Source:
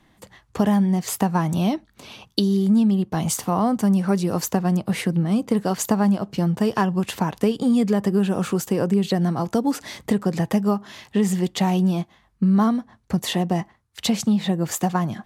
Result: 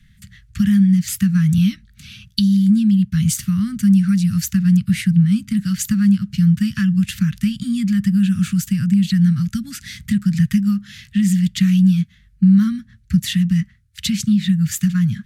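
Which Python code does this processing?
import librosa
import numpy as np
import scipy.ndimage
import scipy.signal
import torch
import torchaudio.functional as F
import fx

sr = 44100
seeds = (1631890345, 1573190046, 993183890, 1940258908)

y = scipy.signal.sosfilt(scipy.signal.cheby2(4, 40, [320.0, 980.0], 'bandstop', fs=sr, output='sos'), x)
y = fx.low_shelf(y, sr, hz=180.0, db=12.0)
y = y * librosa.db_to_amplitude(2.5)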